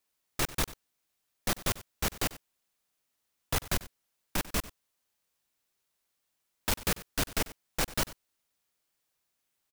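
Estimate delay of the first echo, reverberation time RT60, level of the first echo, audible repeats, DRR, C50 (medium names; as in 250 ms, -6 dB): 94 ms, no reverb, -17.5 dB, 1, no reverb, no reverb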